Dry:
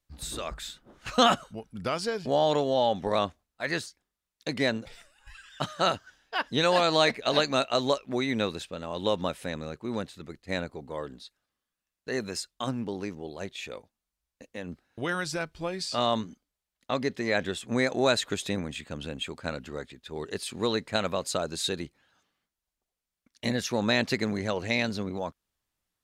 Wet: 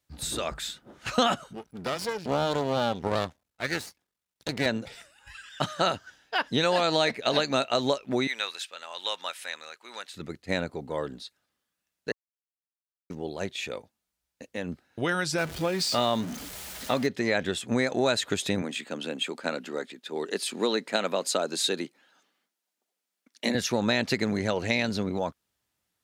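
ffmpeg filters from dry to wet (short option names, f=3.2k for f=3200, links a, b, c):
-filter_complex "[0:a]asettb=1/sr,asplit=3[a][b][c];[a]atrim=end=1.534[d];[b]atrim=start=1.53:end=4.66,asetpts=PTS-STARTPTS,afade=t=in:d=0.004:c=qsin,afade=t=out:st=3.126:d=0.004:c=qsin,aeval=exprs='max(val(0),0)':c=same[e];[c]atrim=start=4.656[f];[d][e]acrossfade=d=0.004:c1=hsin:c2=qsin[g];[g][f]acrossfade=d=0.004:c1=qsin:c2=hsin,asettb=1/sr,asplit=3[h][i][j];[h]atrim=end=8.274[k];[i]atrim=start=8.27:end=10.14,asetpts=PTS-STARTPTS,afade=t=in:d=0.004:c=qsin,afade=t=out:st=1.866:d=0.004:c=qsin,highpass=1.3k[l];[j]atrim=start=10.136[m];[k][l]acrossfade=d=0.004:c1=hsin:c2=qsin[n];[n][m]acrossfade=d=0.004:c1=qsin:c2=hsin,asettb=1/sr,asplit=3[o][p][q];[o]atrim=end=15.384[r];[p]atrim=start=15.38:end=17.07,asetpts=PTS-STARTPTS,afade=t=in:d=0.004:c=qsin,afade=t=out:st=1.686:d=0.004:c=qsin,aeval=exprs='val(0)+0.5*0.0141*sgn(val(0))':c=same[s];[q]atrim=start=17.066[t];[r][s]acrossfade=d=0.004:c1=hsin:c2=qsin[u];[u][t]acrossfade=d=0.004:c1=qsin:c2=hsin,asettb=1/sr,asplit=3[v][w][x];[v]atrim=end=18.624[y];[w]atrim=start=18.62:end=23.55,asetpts=PTS-STARTPTS,afade=t=in:d=0.004:c=qsin,afade=t=out:st=4.926:d=0.004:c=qsin,highpass=f=210:w=0.5412,highpass=f=210:w=1.3066[z];[x]atrim=start=23.546[aa];[y][z]acrossfade=d=0.004:c1=hsin:c2=qsin[ab];[ab][aa]acrossfade=d=0.004:c1=qsin:c2=hsin,asplit=3[ac][ad][ae];[ac]atrim=end=12.12,asetpts=PTS-STARTPTS,afade=t=out:st=12.116:d=0.004:c=hsin[af];[ad]atrim=start=12.12:end=13.1,asetpts=PTS-STARTPTS,volume=0[ag];[ae]atrim=start=13.1,asetpts=PTS-STARTPTS,afade=t=in:d=0.004:c=hsin[ah];[af][ag][ah]concat=n=3:v=0:a=1,highpass=75,bandreject=f=1.1k:w=16,acompressor=threshold=-27dB:ratio=2.5,volume=4.5dB"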